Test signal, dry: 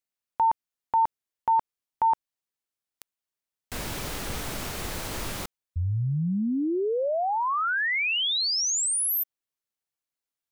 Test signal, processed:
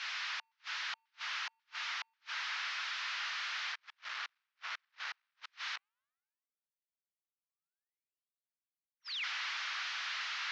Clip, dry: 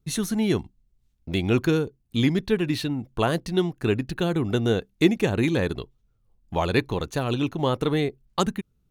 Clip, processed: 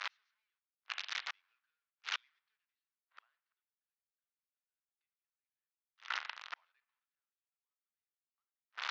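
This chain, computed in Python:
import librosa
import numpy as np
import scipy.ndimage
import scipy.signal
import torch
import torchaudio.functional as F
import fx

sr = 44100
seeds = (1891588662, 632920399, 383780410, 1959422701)

p1 = fx.delta_mod(x, sr, bps=32000, step_db=-23.0)
p2 = scipy.signal.sosfilt(scipy.signal.butter(2, 4400.0, 'lowpass', fs=sr, output='sos'), p1)
p3 = fx.rev_spring(p2, sr, rt60_s=1.2, pass_ms=(39,), chirp_ms=40, drr_db=11.0)
p4 = fx.gate_flip(p3, sr, shuts_db=-23.0, range_db=-41)
p5 = scipy.signal.sosfilt(scipy.signal.butter(4, 1300.0, 'highpass', fs=sr, output='sos'), p4)
p6 = fx.high_shelf(p5, sr, hz=2400.0, db=-11.5)
p7 = fx.level_steps(p6, sr, step_db=17)
p8 = p6 + (p7 * librosa.db_to_amplitude(-1.0))
p9 = fx.band_widen(p8, sr, depth_pct=100)
y = p9 * librosa.db_to_amplitude(-2.0)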